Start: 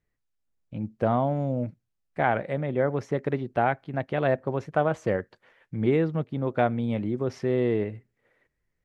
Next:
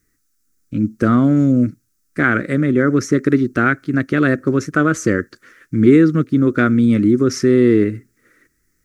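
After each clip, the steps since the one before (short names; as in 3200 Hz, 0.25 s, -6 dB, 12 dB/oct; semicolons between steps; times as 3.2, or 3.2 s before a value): EQ curve 170 Hz 0 dB, 300 Hz +10 dB, 860 Hz -21 dB, 1300 Hz +8 dB, 3100 Hz -4 dB, 5900 Hz +14 dB; in parallel at -2 dB: limiter -17 dBFS, peak gain reduction 7.5 dB; on the sum: gain +5.5 dB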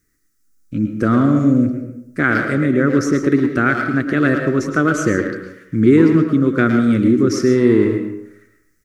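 speakerphone echo 0.11 s, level -7 dB; digital reverb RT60 0.76 s, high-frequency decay 0.5×, pre-delay 80 ms, DRR 7 dB; gain -1 dB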